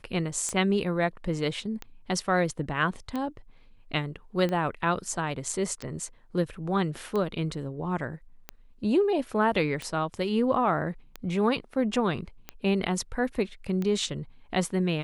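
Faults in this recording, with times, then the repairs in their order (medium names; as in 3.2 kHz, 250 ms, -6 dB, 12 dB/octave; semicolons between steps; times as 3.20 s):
tick 45 rpm -19 dBFS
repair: de-click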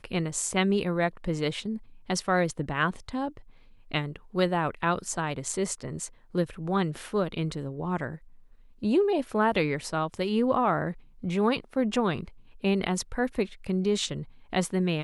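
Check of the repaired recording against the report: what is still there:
nothing left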